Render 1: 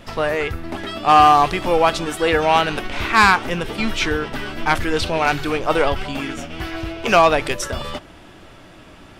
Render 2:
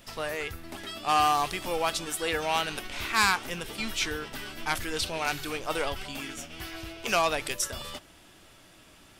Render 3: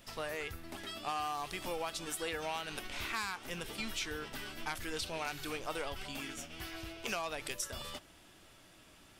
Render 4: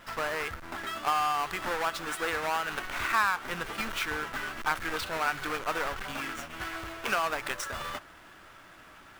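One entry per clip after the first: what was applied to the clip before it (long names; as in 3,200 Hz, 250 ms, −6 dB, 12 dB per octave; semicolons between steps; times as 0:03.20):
first-order pre-emphasis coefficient 0.8
downward compressor 10 to 1, threshold −29 dBFS, peak gain reduction 11 dB; level −5 dB
each half-wave held at its own peak; parametric band 1,400 Hz +14 dB 1.7 octaves; level −3.5 dB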